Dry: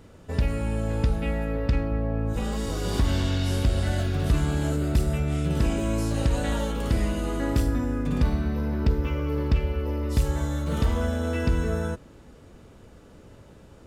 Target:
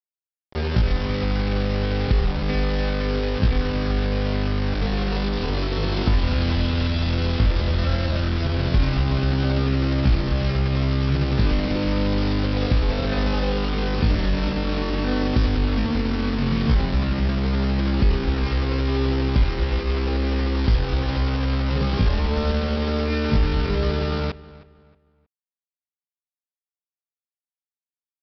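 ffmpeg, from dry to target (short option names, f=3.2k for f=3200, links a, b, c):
-filter_complex "[0:a]highshelf=f=2.3k:g=-3,asplit=2[a][b];[b]acompressor=threshold=-30dB:ratio=6,volume=3dB[c];[a][c]amix=inputs=2:normalize=0,asetrate=40131,aresample=44100,aresample=11025,acrusher=bits=4:mix=0:aa=0.000001,aresample=44100,atempo=0.54,asplit=2[d][e];[e]adelay=315,lowpass=f=3.1k:p=1,volume=-19dB,asplit=2[f][g];[g]adelay=315,lowpass=f=3.1k:p=1,volume=0.32,asplit=2[h][i];[i]adelay=315,lowpass=f=3.1k:p=1,volume=0.32[j];[d][f][h][j]amix=inputs=4:normalize=0"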